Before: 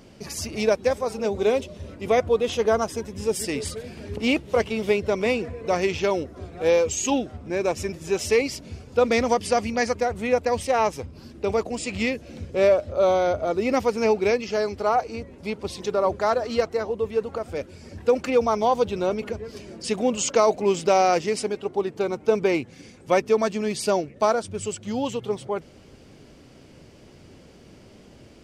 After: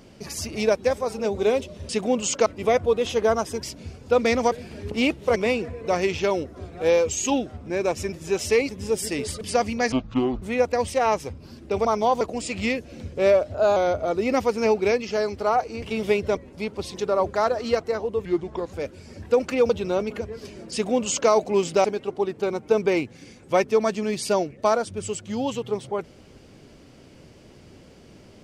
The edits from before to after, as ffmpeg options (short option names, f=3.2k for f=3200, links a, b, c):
-filter_complex "[0:a]asplit=20[a][b][c][d][e][f][g][h][i][j][k][l][m][n][o][p][q][r][s][t];[a]atrim=end=1.892[u];[b]atrim=start=19.838:end=20.412[v];[c]atrim=start=1.888:end=3.062[w];[d]atrim=start=8.488:end=9.382[x];[e]atrim=start=3.778:end=4.622[y];[f]atrim=start=5.158:end=8.492[z];[g]atrim=start=3.058:end=3.782[aa];[h]atrim=start=9.378:end=9.894[ab];[i]atrim=start=9.89:end=10.15,asetpts=PTS-STARTPTS,asetrate=22932,aresample=44100[ac];[j]atrim=start=10.146:end=11.582[ad];[k]atrim=start=18.448:end=18.812[ae];[l]atrim=start=11.578:end=12.874[af];[m]atrim=start=12.87:end=13.16,asetpts=PTS-STARTPTS,asetrate=48510,aresample=44100,atrim=end_sample=11626,asetpts=PTS-STARTPTS[ag];[n]atrim=start=13.156:end=15.222[ah];[o]atrim=start=4.618:end=5.162[ai];[p]atrim=start=15.218:end=17.114[aj];[q]atrim=start=17.11:end=17.49,asetpts=PTS-STARTPTS,asetrate=34839,aresample=44100[ak];[r]atrim=start=17.486:end=18.452[al];[s]atrim=start=18.808:end=20.962[am];[t]atrim=start=21.418[an];[u][v]acrossfade=d=0.004:c1=hsin:c2=hsin[ao];[ao][w]acrossfade=d=0.004:c1=hsin:c2=hsin[ap];[ap][x]acrossfade=d=0.004:c1=hsin:c2=hsin[aq];[aq][y]acrossfade=d=0.004:c1=hsin:c2=hsin[ar];[ar][z]acrossfade=d=0.004:c1=hsin:c2=hsin[as];[as][aa]acrossfade=d=0.004:c1=hsin:c2=hsin[at];[at][ab]acrossfade=d=0.004:c1=hsin:c2=hsin[au];[au][ac]acrossfade=d=0.004:c1=hsin:c2=hsin[av];[av][ad]acrossfade=d=0.004:c1=hsin:c2=hsin[aw];[aw][ae]acrossfade=d=0.004:c1=hsin:c2=hsin[ax];[ax][af]acrossfade=d=0.004:c1=hsin:c2=hsin[ay];[ay][ag]acrossfade=d=0.004:c1=hsin:c2=hsin[az];[az][ah]acrossfade=d=0.004:c1=hsin:c2=hsin[ba];[ba][ai]acrossfade=d=0.004:c1=hsin:c2=hsin[bb];[bb][aj]acrossfade=d=0.004:c1=hsin:c2=hsin[bc];[bc][ak]acrossfade=d=0.004:c1=hsin:c2=hsin[bd];[bd][al]acrossfade=d=0.004:c1=hsin:c2=hsin[be];[be][am]acrossfade=d=0.004:c1=hsin:c2=hsin[bf];[bf][an]acrossfade=d=0.004:c1=hsin:c2=hsin"